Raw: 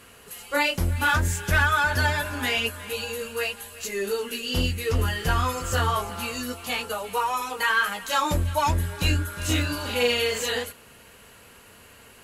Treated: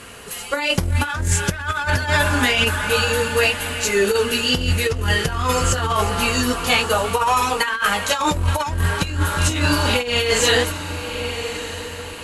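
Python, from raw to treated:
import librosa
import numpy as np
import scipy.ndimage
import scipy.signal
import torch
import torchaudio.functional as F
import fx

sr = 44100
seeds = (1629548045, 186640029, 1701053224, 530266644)

y = scipy.signal.sosfilt(scipy.signal.butter(4, 11000.0, 'lowpass', fs=sr, output='sos'), x)
y = fx.echo_diffused(y, sr, ms=1199, feedback_pct=42, wet_db=-14.0)
y = fx.over_compress(y, sr, threshold_db=-26.0, ratio=-0.5)
y = y * librosa.db_to_amplitude(8.5)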